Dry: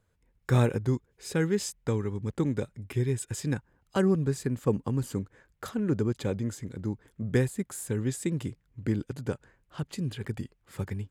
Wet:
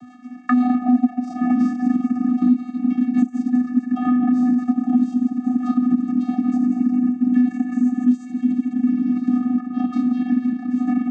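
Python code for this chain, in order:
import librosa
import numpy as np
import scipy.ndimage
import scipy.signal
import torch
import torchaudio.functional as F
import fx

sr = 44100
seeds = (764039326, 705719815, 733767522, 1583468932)

y = fx.sine_speech(x, sr, at=(6.57, 7.22))
y = fx.high_shelf(y, sr, hz=2100.0, db=-7.5)
y = fx.rev_plate(y, sr, seeds[0], rt60_s=4.5, hf_ratio=0.45, predelay_ms=0, drr_db=-10.0)
y = fx.transient(y, sr, attack_db=-9, sustain_db=10, at=(3.07, 3.55), fade=0.02)
y = fx.dereverb_blind(y, sr, rt60_s=1.5)
y = fx.level_steps(y, sr, step_db=10)
y = fx.vocoder(y, sr, bands=16, carrier='square', carrier_hz=248.0)
y = fx.peak_eq(y, sr, hz=700.0, db=13.0, octaves=0.21, at=(0.86, 1.51))
y = fx.band_squash(y, sr, depth_pct=100)
y = y * librosa.db_to_amplitude(8.0)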